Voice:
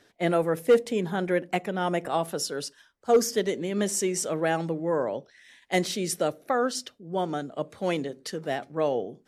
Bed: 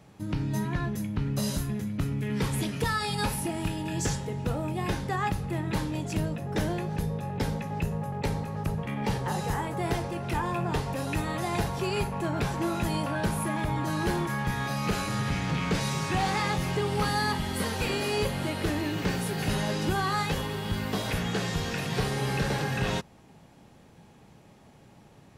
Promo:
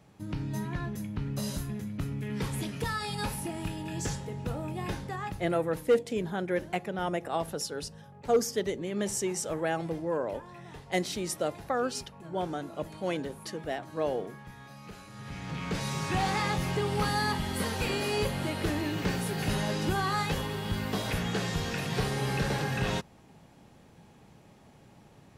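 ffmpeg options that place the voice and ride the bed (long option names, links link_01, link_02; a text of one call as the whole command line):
ffmpeg -i stem1.wav -i stem2.wav -filter_complex "[0:a]adelay=5200,volume=-4.5dB[link_01];[1:a]volume=12dB,afade=type=out:start_time=4.84:duration=0.98:silence=0.211349,afade=type=in:start_time=15.13:duration=1.04:silence=0.149624[link_02];[link_01][link_02]amix=inputs=2:normalize=0" out.wav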